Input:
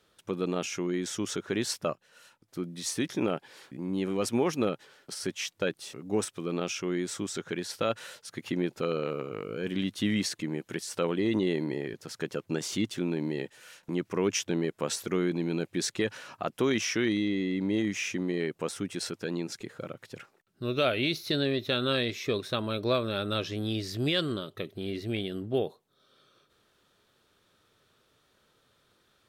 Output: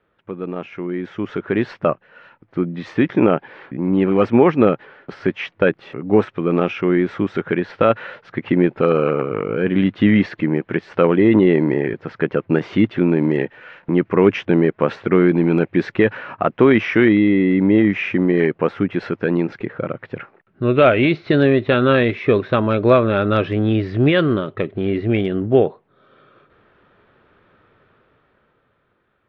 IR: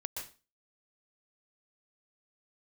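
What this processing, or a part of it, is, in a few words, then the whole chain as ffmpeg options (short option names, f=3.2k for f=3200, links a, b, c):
action camera in a waterproof case: -af "lowpass=f=2.3k:w=0.5412,lowpass=f=2.3k:w=1.3066,dynaudnorm=f=170:g=17:m=12dB,volume=3dB" -ar 44100 -c:a aac -b:a 64k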